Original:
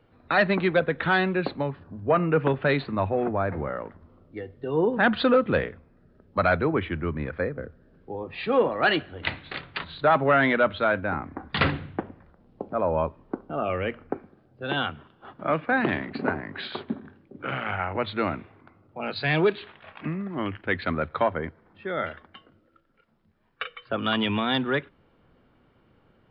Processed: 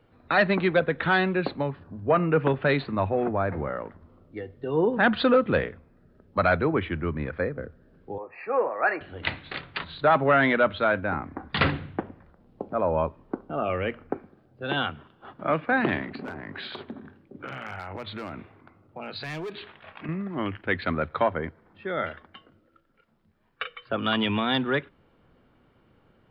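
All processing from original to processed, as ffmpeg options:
-filter_complex "[0:a]asettb=1/sr,asplit=3[a][b][c];[a]atrim=end=8.184[d];[b]atrim=start=8.18:end=9.01,asetpts=PTS-STARTPTS,afade=t=in:d=0.004:c=qsin,afade=t=out:st=0.826:d=0.004:c=qsin,asuperstop=centerf=3400:order=20:qfactor=2.3,acrossover=split=420 2200:gain=0.0891 1 0.1[e][f][g];[e][f][g]amix=inputs=3:normalize=0[h];[c]atrim=start=9.006[i];[d][h]acrossfade=d=0.004:c1=hsin:c2=qsin[j];[j][i]acrossfade=d=0.004:c1=qsin:c2=hsin,asettb=1/sr,asplit=3[k][l][m];[k]atrim=end=16.104[n];[l]atrim=start=16.1:end=20.09,asetpts=PTS-STARTPTS,afade=t=in:d=0.004:c=qsin,afade=t=out:st=3.986:d=0.004:c=qsin,asoftclip=type=hard:threshold=-20.5dB,acompressor=threshold=-32dB:ratio=10:attack=3.2:release=140:knee=1:detection=peak[o];[m]atrim=start=20.086[p];[n][o]acrossfade=d=0.004:c1=hsin:c2=qsin[q];[q][p]acrossfade=d=0.004:c1=qsin:c2=hsin"

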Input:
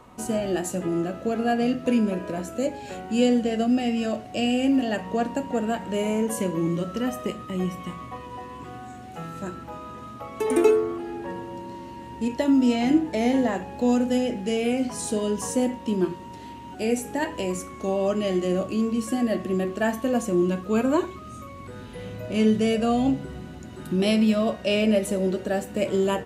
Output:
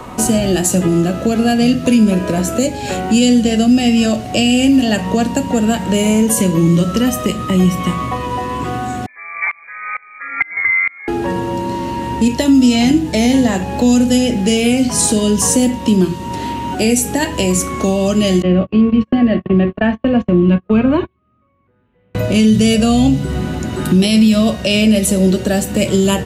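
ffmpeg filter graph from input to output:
-filter_complex "[0:a]asettb=1/sr,asplit=3[a][b][c];[a]atrim=end=9.064[d];[b]atrim=start=9.06:end=11.08,asetpts=PTS-STARTPTS,afade=t=in:d=0.004:c=qsin,afade=t=out:st=2.016:d=0.004:c=qsin,lowpass=f=2.1k:t=q:w=0.5098,lowpass=f=2.1k:t=q:w=0.6013,lowpass=f=2.1k:t=q:w=0.9,lowpass=f=2.1k:t=q:w=2.563,afreqshift=-2500,aeval=exprs='val(0)*pow(10,-26*if(lt(mod(-2.2*n/s,1),2*abs(-2.2)/1000),1-mod(-2.2*n/s,1)/(2*abs(-2.2)/1000),(mod(-2.2*n/s,1)-2*abs(-2.2)/1000)/(1-2*abs(-2.2)/1000))/20)':c=same[e];[c]atrim=start=11.076[f];[d][e]acrossfade=d=0.004:c1=hsin:c2=qsin[g];[g][f]acrossfade=d=0.004:c1=qsin:c2=hsin,asettb=1/sr,asplit=3[h][i][j];[h]atrim=end=18.424[k];[i]atrim=start=18.42:end=22.15,asetpts=PTS-STARTPTS,afade=t=in:d=0.004:c=qsin,afade=t=out:st=3.726:d=0.004:c=qsin,lowpass=f=2.7k:w=0.5412,lowpass=f=2.7k:w=1.3066,agate=range=-39dB:threshold=-29dB:ratio=16:release=100:detection=peak[l];[j]atrim=start=22.146[m];[k][l]acrossfade=d=0.004:c1=hsin:c2=qsin[n];[n][m]acrossfade=d=0.004:c1=qsin:c2=hsin,acrossover=split=190|3000[o][p][q];[p]acompressor=threshold=-37dB:ratio=4[r];[o][r][q]amix=inputs=3:normalize=0,alimiter=level_in=21.5dB:limit=-1dB:release=50:level=0:latency=1,volume=-2.5dB"

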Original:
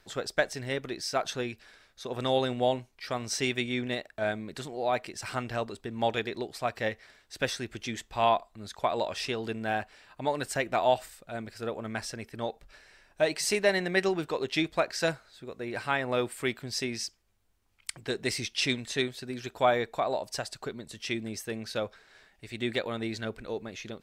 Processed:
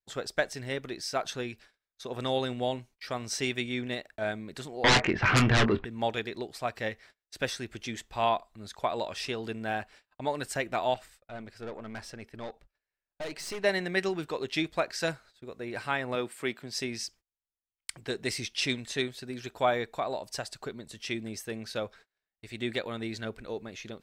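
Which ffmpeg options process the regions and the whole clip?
-filter_complex "[0:a]asettb=1/sr,asplit=3[a][b][c];[a]atrim=end=4.844[d];[b]atrim=start=4.84:end=5.85,asetpts=PTS-STARTPTS,afade=t=in:d=0.004:c=qsin,afade=t=out:st=1.006:d=0.004:c=qsin,lowpass=f=2.4k:w=0.5412,lowpass=f=2.4k:w=1.3066,aeval=exprs='0.168*sin(PI/2*6.31*val(0)/0.168)':c=same,asplit=2[e][f];[f]adelay=23,volume=-10.5dB[g];[e][g]amix=inputs=2:normalize=0,atrim=end_sample=44541[h];[c]atrim=start=5.846[i];[d][h]acrossfade=d=0.004:c1=hsin:c2=qsin[j];[j][i]acrossfade=d=0.004:c1=qsin:c2=hsin,asettb=1/sr,asplit=3[k][l][m];[k]atrim=end=10.944[n];[l]atrim=start=10.94:end=13.64,asetpts=PTS-STARTPTS,afade=t=in:d=0.004:c=qsin,afade=t=out:st=2.696:d=0.004:c=qsin,highshelf=f=6.3k:g=-9.5,aeval=exprs='(tanh(39.8*val(0)+0.45)-tanh(0.45))/39.8':c=same[o];[m]atrim=start=13.636[p];[n][o]acrossfade=d=0.004:c1=hsin:c2=qsin[q];[q][p]acrossfade=d=0.004:c1=qsin:c2=hsin,asettb=1/sr,asplit=3[r][s][t];[r]atrim=end=16.154[u];[s]atrim=start=16.15:end=16.75,asetpts=PTS-STARTPTS,afade=t=in:d=0.004:c=qsin,afade=t=out:st=0.596:d=0.004:c=qsin,highpass=150,highshelf=f=4.8k:g=-4[v];[t]atrim=start=16.746[w];[u][v]acrossfade=d=0.004:c1=hsin:c2=qsin[x];[x][w]acrossfade=d=0.004:c1=qsin:c2=hsin,adynamicequalizer=threshold=0.0126:dfrequency=640:dqfactor=1.1:tfrequency=640:tqfactor=1.1:attack=5:release=100:ratio=0.375:range=3:mode=cutabove:tftype=bell,agate=range=-31dB:threshold=-51dB:ratio=16:detection=peak,volume=-1.5dB"

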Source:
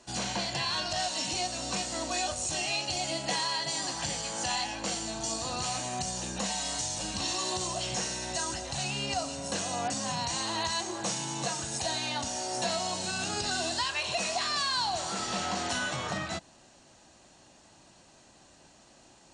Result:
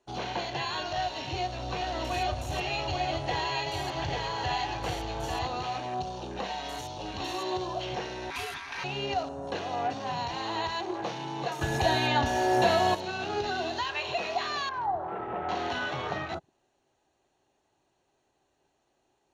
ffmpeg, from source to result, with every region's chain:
-filter_complex "[0:a]asettb=1/sr,asplit=3[a][b][c];[a]atrim=end=0.974[d];[b]atrim=start=0.97:end=5.47,asetpts=PTS-STARTPTS,afade=t=in:d=0.004:c=qsin,afade=t=out:st=4.496:d=0.004:c=qsin,lowshelf=f=150:t=q:w=1.5:g=8,aecho=1:1:843:0.668,atrim=end_sample=198450[e];[c]atrim=start=5.466[f];[d][e]acrossfade=d=0.004:c1=hsin:c2=qsin[g];[g][f]acrossfade=d=0.004:c1=qsin:c2=hsin,asettb=1/sr,asplit=3[h][i][j];[h]atrim=end=8.304[k];[i]atrim=start=8.3:end=8.84,asetpts=PTS-STARTPTS,afade=t=in:d=0.004:c=qsin,afade=t=out:st=0.536:d=0.004:c=qsin,highshelf=f=3.1k:g=8.5,aeval=exprs='val(0)+0.00794*sin(2*PI*3300*n/s)':c=same,aeval=exprs='val(0)*sin(2*PI*1700*n/s)':c=same[l];[j]atrim=start=8.836[m];[k][l]acrossfade=d=0.004:c1=hsin:c2=qsin[n];[n][m]acrossfade=d=0.004:c1=qsin:c2=hsin,asettb=1/sr,asplit=3[o][p][q];[o]atrim=end=11.614[r];[p]atrim=start=11.61:end=12.95,asetpts=PTS-STARTPTS,afade=t=in:d=0.004:c=qsin,afade=t=out:st=1.336:d=0.004:c=qsin,lowshelf=f=190:g=8,acontrast=65,aeval=exprs='val(0)+0.0158*sin(2*PI*1700*n/s)':c=same[s];[q]atrim=start=12.946[t];[r][s]acrossfade=d=0.004:c1=hsin:c2=qsin[u];[u][t]acrossfade=d=0.004:c1=qsin:c2=hsin,asettb=1/sr,asplit=3[v][w][x];[v]atrim=end=14.694[y];[w]atrim=start=14.69:end=15.49,asetpts=PTS-STARTPTS,afade=t=in:d=0.004:c=qsin,afade=t=out:st=0.796:d=0.004:c=qsin,lowpass=1.4k,bandreject=f=50:t=h:w=6,bandreject=f=100:t=h:w=6,bandreject=f=150:t=h:w=6,bandreject=f=200:t=h:w=6,bandreject=f=250:t=h:w=6,bandreject=f=300:t=h:w=6,bandreject=f=350:t=h:w=6,bandreject=f=400:t=h:w=6[z];[x]atrim=start=15.486[aa];[y][z]acrossfade=d=0.004:c1=hsin:c2=qsin[ab];[ab][aa]acrossfade=d=0.004:c1=qsin:c2=hsin,acrossover=split=4600[ac][ad];[ad]acompressor=threshold=-42dB:ratio=4:attack=1:release=60[ae];[ac][ae]amix=inputs=2:normalize=0,afwtdn=0.00708,equalizer=f=200:t=o:w=0.33:g=-9,equalizer=f=400:t=o:w=0.33:g=10,equalizer=f=800:t=o:w=0.33:g=5,equalizer=f=5k:t=o:w=0.33:g=-10,equalizer=f=8k:t=o:w=0.33:g=-11"

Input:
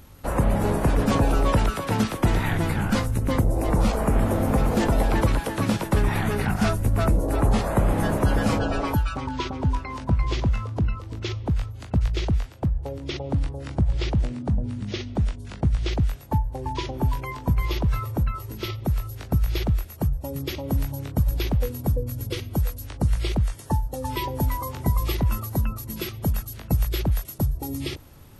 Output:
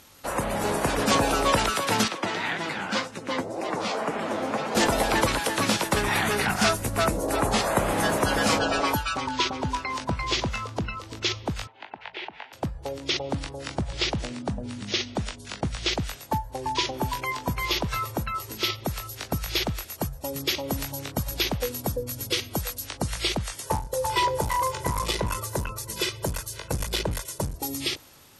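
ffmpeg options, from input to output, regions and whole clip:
-filter_complex "[0:a]asettb=1/sr,asplit=3[a][b][c];[a]atrim=end=2.084[d];[b]atrim=start=2.08:end=4.75,asetpts=PTS-STARTPTS,afade=t=in:d=0.004:c=qsin,afade=t=out:st=2.666:d=0.004:c=qsin,flanger=delay=4.9:depth=6.6:regen=36:speed=1.9:shape=sinusoidal,highpass=190,lowpass=5.1k[e];[c]atrim=start=4.746[f];[d][e]acrossfade=d=0.004:c1=hsin:c2=qsin[g];[g][f]acrossfade=d=0.004:c1=qsin:c2=hsin,asettb=1/sr,asplit=3[h][i][j];[h]atrim=end=11.674[k];[i]atrim=start=11.67:end=12.53,asetpts=PTS-STARTPTS,afade=t=in:d=0.004:c=qsin,afade=t=out:st=0.856:d=0.004:c=qsin,highpass=430,equalizer=f=510:t=q:w=4:g=-6,equalizer=f=880:t=q:w=4:g=9,equalizer=f=1.2k:t=q:w=4:g=-9,lowpass=f=2.8k:w=0.5412,lowpass=f=2.8k:w=1.3066,acompressor=threshold=-35dB:ratio=6:attack=3.2:release=140:knee=1:detection=peak[l];[j]atrim=start=12.526[m];[k][l]acrossfade=d=0.004:c1=hsin:c2=qsin[n];[n][m]acrossfade=d=0.004:c1=qsin:c2=hsin,asettb=1/sr,asplit=3[o][p][q];[o]atrim=end=23.634[r];[p]atrim=start=23.63:end=27.56,asetpts=PTS-STARTPTS,afade=t=in:d=0.004:c=qsin,afade=t=out:st=3.926:d=0.004:c=qsin,equalizer=f=4.1k:w=0.38:g=-4.5,aecho=1:1:2:0.97,atrim=end_sample=173313,aeval=exprs='clip(val(0),-1,0.0891)':c=same[s];[q]atrim=start=27.556[t];[r][s]acrossfade=d=0.004:c1=hsin:c2=qsin[u];[u][t]acrossfade=d=0.004:c1=qsin:c2=hsin,aemphasis=mode=production:type=riaa,dynaudnorm=f=230:g=7:m=4dB,lowpass=5.9k"

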